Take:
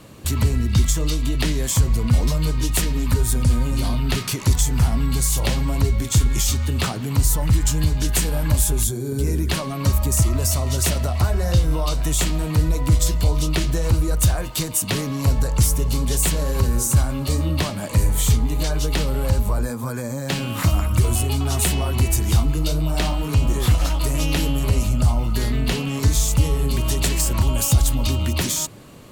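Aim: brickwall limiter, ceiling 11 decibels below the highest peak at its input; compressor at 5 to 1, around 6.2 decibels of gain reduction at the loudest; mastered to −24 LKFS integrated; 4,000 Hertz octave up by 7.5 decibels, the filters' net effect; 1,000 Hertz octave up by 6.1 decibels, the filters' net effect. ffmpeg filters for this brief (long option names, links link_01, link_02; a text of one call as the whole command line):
ffmpeg -i in.wav -af "equalizer=frequency=1000:width_type=o:gain=7,equalizer=frequency=4000:width_type=o:gain=9,acompressor=threshold=-18dB:ratio=5,volume=1.5dB,alimiter=limit=-14.5dB:level=0:latency=1" out.wav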